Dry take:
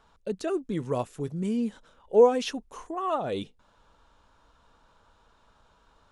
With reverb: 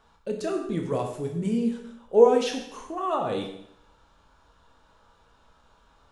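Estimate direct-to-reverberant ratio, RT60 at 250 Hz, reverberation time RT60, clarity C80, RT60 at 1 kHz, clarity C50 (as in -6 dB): 2.0 dB, 0.70 s, 0.70 s, 8.5 dB, 0.70 s, 6.0 dB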